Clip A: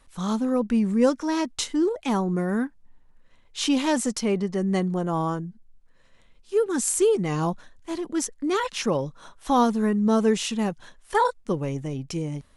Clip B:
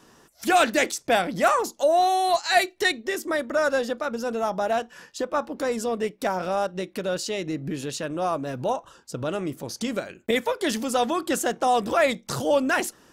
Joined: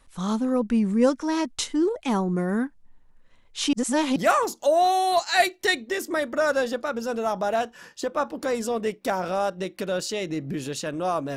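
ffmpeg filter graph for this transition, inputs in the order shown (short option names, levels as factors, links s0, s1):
-filter_complex "[0:a]apad=whole_dur=11.36,atrim=end=11.36,asplit=2[s0][s1];[s0]atrim=end=3.732[s2];[s1]atrim=start=3.728:end=4.162,asetpts=PTS-STARTPTS,areverse[s3];[1:a]atrim=start=1.328:end=8.53[s4];[s2][s3]acrossfade=d=0.004:c1=hsin:c2=hsin[s5];[s5][s4]acrossfade=d=0.004:c1=hsin:c2=hsin"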